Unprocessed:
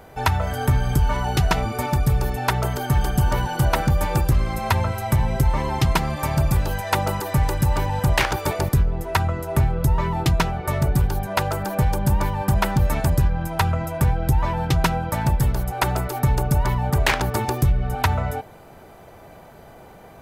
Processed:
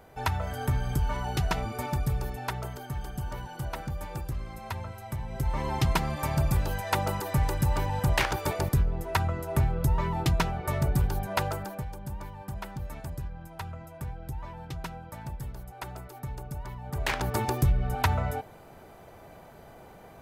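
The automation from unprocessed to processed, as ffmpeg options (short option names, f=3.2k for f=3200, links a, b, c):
-af "volume=14dB,afade=t=out:st=1.96:d=0.95:silence=0.446684,afade=t=in:st=5.28:d=0.42:silence=0.334965,afade=t=out:st=11.44:d=0.41:silence=0.251189,afade=t=in:st=16.84:d=0.55:silence=0.223872"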